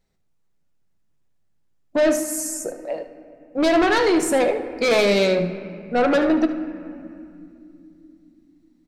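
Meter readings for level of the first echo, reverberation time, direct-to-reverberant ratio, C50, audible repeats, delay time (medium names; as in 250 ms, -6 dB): -13.0 dB, 2.7 s, 8.0 dB, 9.0 dB, 1, 74 ms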